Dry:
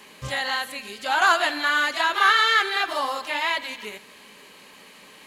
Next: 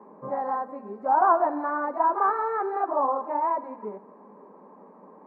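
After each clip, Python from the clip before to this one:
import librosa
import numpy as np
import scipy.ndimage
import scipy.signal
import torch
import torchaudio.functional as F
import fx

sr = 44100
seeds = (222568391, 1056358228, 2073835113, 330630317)

y = scipy.signal.sosfilt(scipy.signal.ellip(3, 1.0, 50, [190.0, 1000.0], 'bandpass', fs=sr, output='sos'), x)
y = F.gain(torch.from_numpy(y), 4.5).numpy()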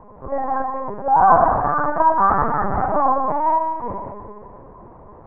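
y = fx.rev_plate(x, sr, seeds[0], rt60_s=2.1, hf_ratio=1.0, predelay_ms=0, drr_db=0.0)
y = fx.lpc_vocoder(y, sr, seeds[1], excitation='pitch_kept', order=8)
y = F.gain(torch.from_numpy(y), 4.5).numpy()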